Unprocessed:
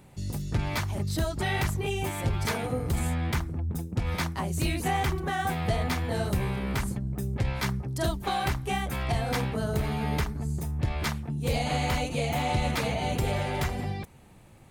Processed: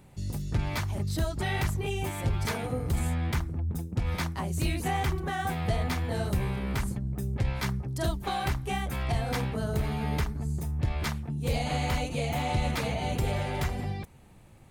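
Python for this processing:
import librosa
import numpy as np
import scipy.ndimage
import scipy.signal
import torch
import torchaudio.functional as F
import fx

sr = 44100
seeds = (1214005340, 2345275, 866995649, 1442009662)

y = fx.low_shelf(x, sr, hz=100.0, db=4.5)
y = F.gain(torch.from_numpy(y), -2.5).numpy()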